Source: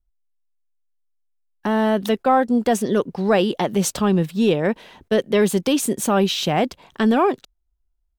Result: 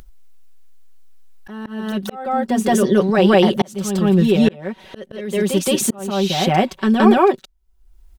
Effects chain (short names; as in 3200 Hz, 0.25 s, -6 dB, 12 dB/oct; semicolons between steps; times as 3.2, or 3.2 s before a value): comb 5.3 ms, depth 82%; reverse echo 0.17 s -3 dB; auto swell 0.679 s; upward compressor, threshold -26 dBFS; gain +1 dB